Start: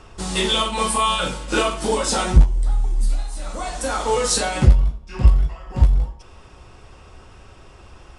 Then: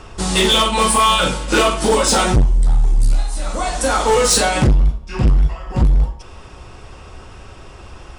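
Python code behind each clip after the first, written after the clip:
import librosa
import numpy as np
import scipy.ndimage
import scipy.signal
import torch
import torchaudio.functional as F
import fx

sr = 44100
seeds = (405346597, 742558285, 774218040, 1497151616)

y = np.clip(x, -10.0 ** (-16.0 / 20.0), 10.0 ** (-16.0 / 20.0))
y = y * 10.0 ** (7.0 / 20.0)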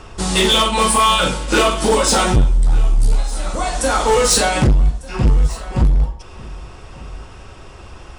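y = x + 10.0 ** (-20.5 / 20.0) * np.pad(x, (int(1198 * sr / 1000.0), 0))[:len(x)]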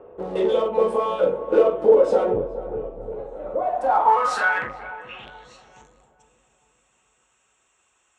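y = fx.wiener(x, sr, points=9)
y = fx.filter_sweep_bandpass(y, sr, from_hz=490.0, to_hz=7600.0, start_s=3.49, end_s=5.98, q=5.5)
y = fx.echo_filtered(y, sr, ms=425, feedback_pct=52, hz=920.0, wet_db=-11.5)
y = y * 10.0 ** (7.0 / 20.0)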